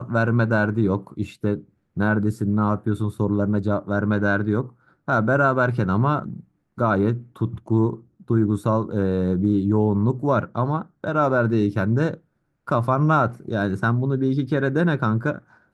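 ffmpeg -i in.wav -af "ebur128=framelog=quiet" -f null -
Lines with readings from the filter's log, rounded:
Integrated loudness:
  I:         -22.1 LUFS
  Threshold: -32.4 LUFS
Loudness range:
  LRA:         1.7 LU
  Threshold: -42.4 LUFS
  LRA low:   -23.3 LUFS
  LRA high:  -21.6 LUFS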